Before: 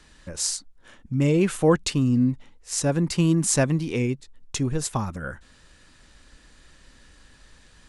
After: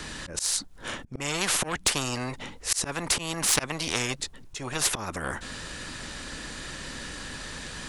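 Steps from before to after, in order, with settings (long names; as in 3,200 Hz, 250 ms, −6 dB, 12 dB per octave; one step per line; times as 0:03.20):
harmonic generator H 5 −23 dB, 7 −24 dB, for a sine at −5.5 dBFS
volume swells 356 ms
every bin compressed towards the loudest bin 4 to 1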